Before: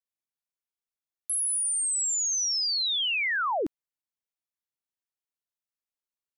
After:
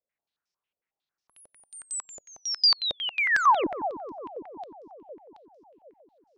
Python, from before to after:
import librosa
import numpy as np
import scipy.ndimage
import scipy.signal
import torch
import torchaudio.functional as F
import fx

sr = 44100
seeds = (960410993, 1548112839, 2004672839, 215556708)

y = fx.cheby_harmonics(x, sr, harmonics=(5,), levels_db=(-19,), full_scale_db=-24.0)
y = fx.echo_bbd(y, sr, ms=151, stages=1024, feedback_pct=82, wet_db=-8.5)
y = fx.filter_held_lowpass(y, sr, hz=11.0, low_hz=570.0, high_hz=5400.0)